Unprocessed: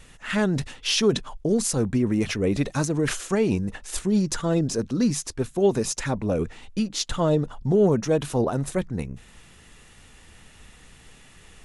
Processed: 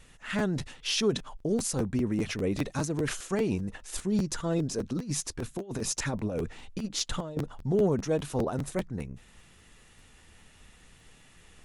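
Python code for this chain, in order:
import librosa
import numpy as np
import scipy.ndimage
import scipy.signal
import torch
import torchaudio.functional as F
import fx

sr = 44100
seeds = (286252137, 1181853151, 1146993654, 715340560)

y = fx.over_compress(x, sr, threshold_db=-25.0, ratio=-0.5, at=(4.83, 7.37))
y = fx.buffer_crackle(y, sr, first_s=0.38, period_s=0.2, block=512, kind='repeat')
y = y * librosa.db_to_amplitude(-6.0)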